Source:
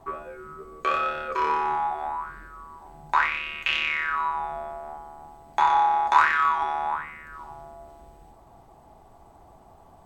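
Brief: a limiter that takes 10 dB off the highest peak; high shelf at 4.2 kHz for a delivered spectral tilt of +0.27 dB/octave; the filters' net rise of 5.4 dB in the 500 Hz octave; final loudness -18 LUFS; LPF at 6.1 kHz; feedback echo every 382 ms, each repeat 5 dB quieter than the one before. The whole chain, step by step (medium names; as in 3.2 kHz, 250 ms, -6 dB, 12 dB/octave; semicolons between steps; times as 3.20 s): low-pass 6.1 kHz; peaking EQ 500 Hz +7 dB; treble shelf 4.2 kHz +8 dB; peak limiter -14 dBFS; feedback delay 382 ms, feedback 56%, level -5 dB; trim +7 dB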